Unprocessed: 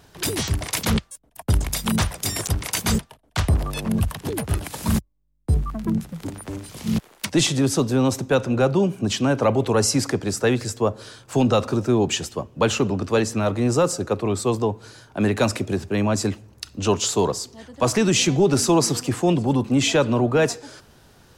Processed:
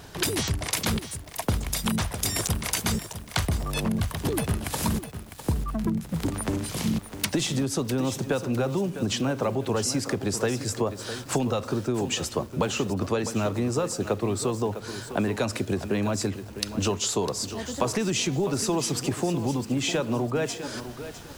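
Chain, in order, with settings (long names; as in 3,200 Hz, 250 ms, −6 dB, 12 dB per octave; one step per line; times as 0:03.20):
downward compressor 12 to 1, threshold −30 dBFS, peak gain reduction 17 dB
feedback echo at a low word length 654 ms, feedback 35%, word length 8 bits, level −10.5 dB
level +7 dB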